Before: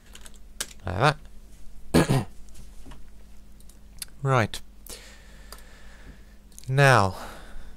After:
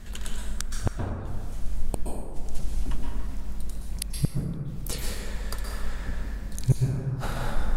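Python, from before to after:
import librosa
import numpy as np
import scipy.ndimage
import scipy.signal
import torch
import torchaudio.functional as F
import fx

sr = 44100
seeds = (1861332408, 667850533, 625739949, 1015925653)

y = fx.low_shelf(x, sr, hz=170.0, db=8.5)
y = fx.gate_flip(y, sr, shuts_db=-16.0, range_db=-41)
y = fx.rev_plate(y, sr, seeds[0], rt60_s=1.9, hf_ratio=0.4, predelay_ms=110, drr_db=-1.0)
y = y * librosa.db_to_amplitude(5.5)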